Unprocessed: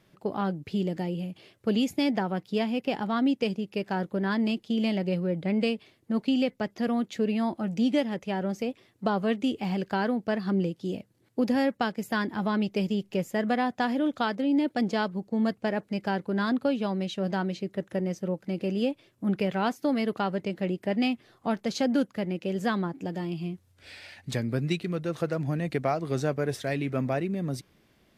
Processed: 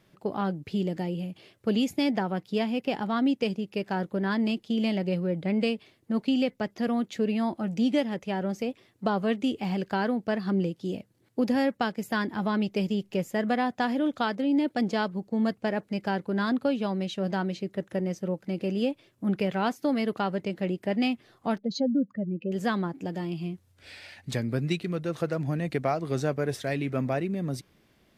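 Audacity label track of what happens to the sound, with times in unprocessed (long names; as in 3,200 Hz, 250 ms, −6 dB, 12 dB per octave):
21.580000	22.520000	expanding power law on the bin magnitudes exponent 2.2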